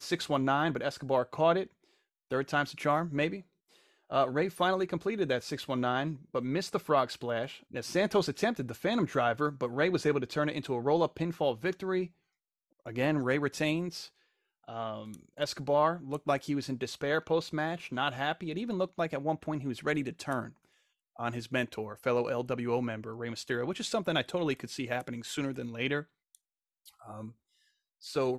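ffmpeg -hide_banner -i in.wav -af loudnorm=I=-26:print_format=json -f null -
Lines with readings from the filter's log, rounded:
"input_i" : "-32.1",
"input_tp" : "-13.1",
"input_lra" : "7.2",
"input_thresh" : "-42.8",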